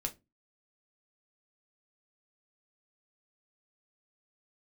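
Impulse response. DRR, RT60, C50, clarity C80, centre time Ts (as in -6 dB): 3.0 dB, not exponential, 19.5 dB, 28.0 dB, 7 ms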